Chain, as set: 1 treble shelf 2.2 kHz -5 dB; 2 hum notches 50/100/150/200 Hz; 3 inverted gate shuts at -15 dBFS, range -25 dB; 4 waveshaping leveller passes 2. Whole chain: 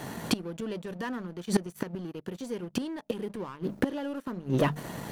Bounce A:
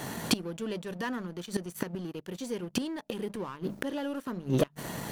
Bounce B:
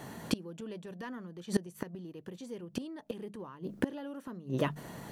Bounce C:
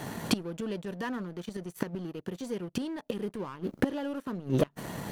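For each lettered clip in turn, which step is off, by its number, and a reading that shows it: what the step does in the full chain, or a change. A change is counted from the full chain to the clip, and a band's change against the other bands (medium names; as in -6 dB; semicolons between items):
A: 1, 8 kHz band +4.0 dB; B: 4, crest factor change +6.0 dB; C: 2, loudness change -1.0 LU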